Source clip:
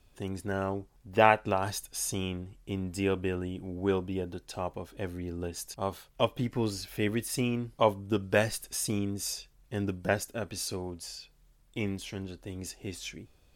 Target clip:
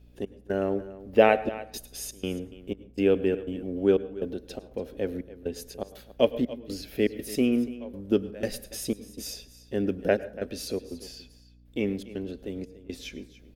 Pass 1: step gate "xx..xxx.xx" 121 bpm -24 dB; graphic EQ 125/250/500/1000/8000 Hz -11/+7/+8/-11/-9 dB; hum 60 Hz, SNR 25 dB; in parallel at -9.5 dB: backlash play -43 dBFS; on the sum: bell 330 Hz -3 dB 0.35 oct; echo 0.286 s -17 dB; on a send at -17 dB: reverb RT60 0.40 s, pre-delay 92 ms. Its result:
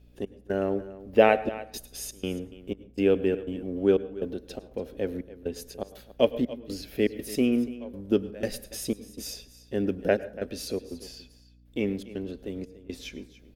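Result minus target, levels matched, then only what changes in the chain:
backlash: distortion +5 dB
change: backlash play -49.5 dBFS

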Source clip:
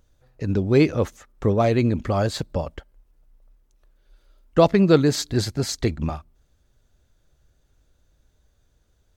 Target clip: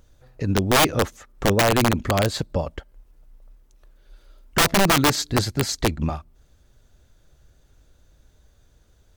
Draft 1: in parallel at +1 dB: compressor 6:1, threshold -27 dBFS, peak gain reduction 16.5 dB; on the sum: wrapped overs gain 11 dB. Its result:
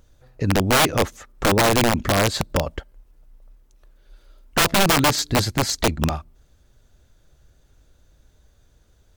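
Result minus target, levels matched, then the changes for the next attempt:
compressor: peak gain reduction -10 dB
change: compressor 6:1, threshold -39 dBFS, peak gain reduction 26.5 dB

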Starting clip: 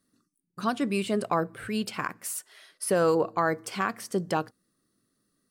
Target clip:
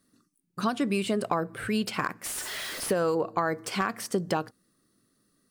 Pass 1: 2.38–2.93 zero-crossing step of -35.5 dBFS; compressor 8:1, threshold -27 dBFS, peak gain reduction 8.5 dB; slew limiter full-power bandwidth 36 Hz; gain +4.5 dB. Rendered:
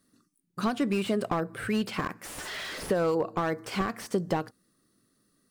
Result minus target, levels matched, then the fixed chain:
slew limiter: distortion +7 dB
2.38–2.93 zero-crossing step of -35.5 dBFS; compressor 8:1, threshold -27 dBFS, peak gain reduction 8.5 dB; slew limiter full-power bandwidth 118 Hz; gain +4.5 dB

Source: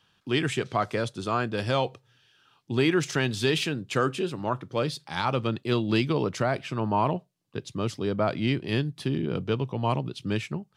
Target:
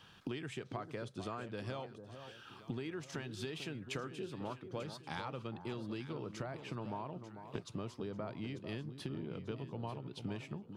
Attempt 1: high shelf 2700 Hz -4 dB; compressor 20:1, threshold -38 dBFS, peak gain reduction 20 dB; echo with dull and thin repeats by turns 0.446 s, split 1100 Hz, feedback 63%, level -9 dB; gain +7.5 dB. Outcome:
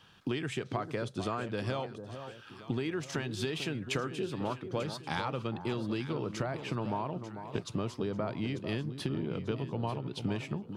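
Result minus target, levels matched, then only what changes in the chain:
compressor: peak gain reduction -8 dB
change: compressor 20:1, threshold -46.5 dBFS, peak gain reduction 28 dB

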